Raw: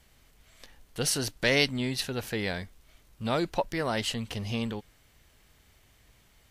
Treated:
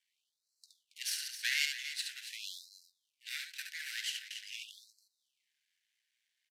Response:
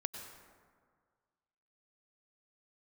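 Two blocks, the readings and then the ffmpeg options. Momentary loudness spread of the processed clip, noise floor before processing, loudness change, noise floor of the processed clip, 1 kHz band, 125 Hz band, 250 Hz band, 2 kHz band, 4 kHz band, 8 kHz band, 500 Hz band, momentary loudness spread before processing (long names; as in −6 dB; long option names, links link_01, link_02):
18 LU, −62 dBFS, −8.0 dB, below −85 dBFS, −30.5 dB, below −40 dB, below −40 dB, −6.0 dB, −5.0 dB, −6.0 dB, below −40 dB, 13 LU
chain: -filter_complex "[0:a]highpass=190,aemphasis=mode=reproduction:type=bsi,agate=range=-12dB:threshold=-58dB:ratio=16:detection=peak,tiltshelf=frequency=970:gain=-4,acrossover=split=700|1500[link_01][link_02][link_03];[link_01]acompressor=threshold=-42dB:ratio=6[link_04];[link_02]acrusher=samples=13:mix=1:aa=0.000001[link_05];[link_04][link_05][link_03]amix=inputs=3:normalize=0,asoftclip=type=tanh:threshold=-12dB,aecho=1:1:69.97|277:0.562|0.282,aeval=exprs='max(val(0),0)':channel_layout=same,aresample=32000,aresample=44100,asuperstop=centerf=670:order=20:qfactor=0.53,afftfilt=real='re*gte(b*sr/1024,400*pow(4000/400,0.5+0.5*sin(2*PI*0.45*pts/sr)))':imag='im*gte(b*sr/1024,400*pow(4000/400,0.5+0.5*sin(2*PI*0.45*pts/sr)))':win_size=1024:overlap=0.75"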